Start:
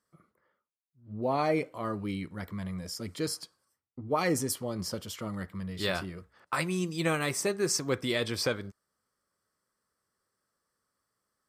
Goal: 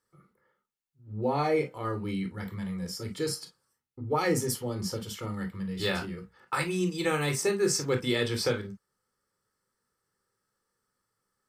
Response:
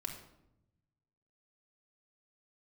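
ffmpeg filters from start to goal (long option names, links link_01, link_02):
-filter_complex "[1:a]atrim=start_sample=2205,atrim=end_sample=3528,asetrate=57330,aresample=44100[link_01];[0:a][link_01]afir=irnorm=-1:irlink=0,volume=4.5dB"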